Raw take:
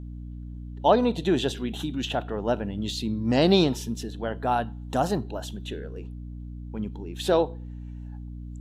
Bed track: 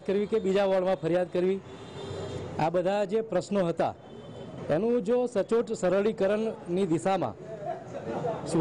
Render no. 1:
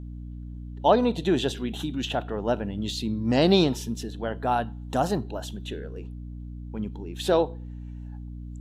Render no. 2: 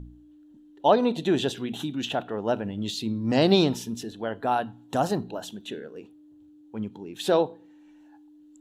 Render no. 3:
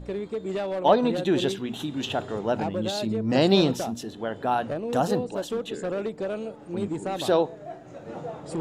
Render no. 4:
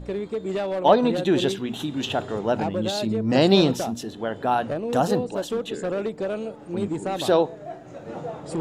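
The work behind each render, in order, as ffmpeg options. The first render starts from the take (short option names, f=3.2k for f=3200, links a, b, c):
-af anull
-af "bandreject=f=60:t=h:w=4,bandreject=f=120:t=h:w=4,bandreject=f=180:t=h:w=4,bandreject=f=240:t=h:w=4"
-filter_complex "[1:a]volume=-4.5dB[a];[0:a][a]amix=inputs=2:normalize=0"
-af "volume=2.5dB"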